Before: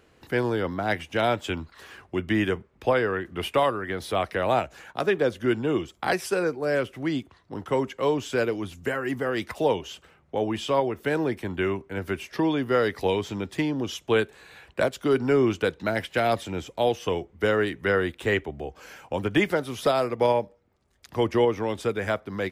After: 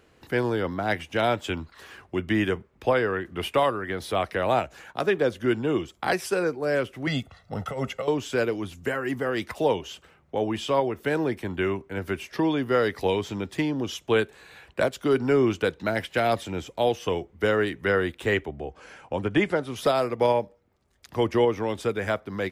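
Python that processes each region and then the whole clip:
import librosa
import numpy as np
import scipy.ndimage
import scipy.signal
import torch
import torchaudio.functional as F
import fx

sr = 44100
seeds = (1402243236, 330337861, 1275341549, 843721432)

y = fx.chain(x, sr, fx.comb(ms=1.5, depth=0.92),
    fx.over_compress(threshold_db=-28.0, ratio=-1.0), at=(7.07, 8.08))
y = fx.chain(y, sr, fx.high_shelf(hz=4000.0, db=-7.5),
    fx.resample_bad(factor=2, down='none', up='filtered'), at=(18.49, 19.76))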